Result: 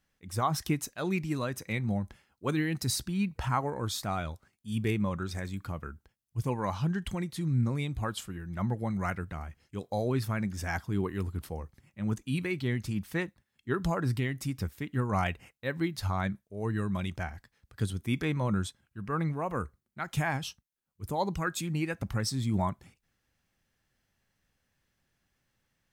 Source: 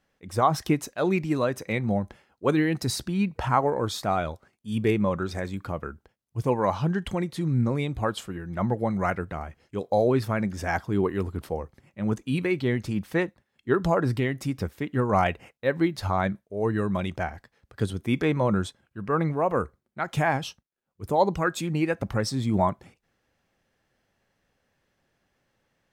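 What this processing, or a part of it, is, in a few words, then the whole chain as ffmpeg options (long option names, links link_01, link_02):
smiley-face EQ: -af "lowshelf=frequency=110:gain=5.5,equalizer=frequency=530:width_type=o:width=1.6:gain=-7,highshelf=frequency=6200:gain=7.5,volume=-4.5dB"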